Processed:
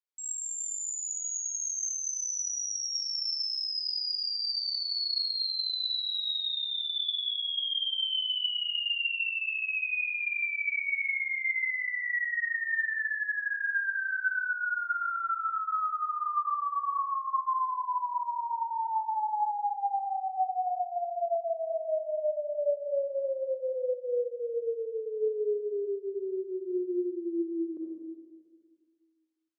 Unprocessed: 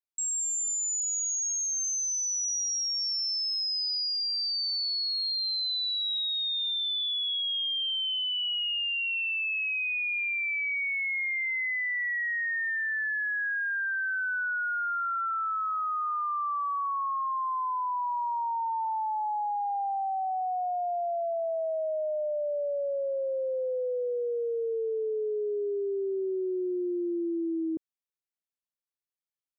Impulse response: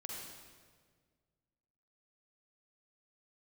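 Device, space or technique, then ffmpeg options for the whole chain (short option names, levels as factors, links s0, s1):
supermarket ceiling speaker: -filter_complex "[0:a]highpass=350,lowpass=6800[s0];[1:a]atrim=start_sample=2205[s1];[s0][s1]afir=irnorm=-1:irlink=0,volume=1.12"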